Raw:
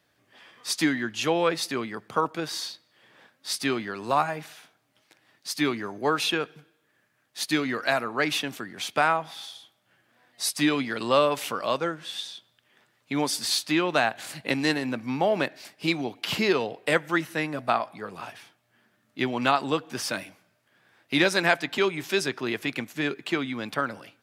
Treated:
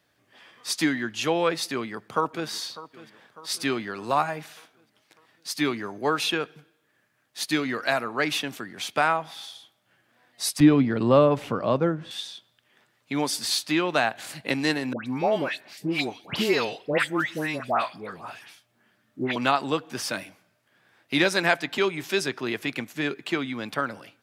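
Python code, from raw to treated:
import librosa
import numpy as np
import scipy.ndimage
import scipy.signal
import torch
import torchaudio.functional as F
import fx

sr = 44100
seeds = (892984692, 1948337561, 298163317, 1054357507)

y = fx.echo_throw(x, sr, start_s=1.73, length_s=0.76, ms=600, feedback_pct=55, wet_db=-17.0)
y = fx.tilt_eq(y, sr, slope=-4.5, at=(10.6, 12.11))
y = fx.dispersion(y, sr, late='highs', ms=130.0, hz=1600.0, at=(14.93, 19.36))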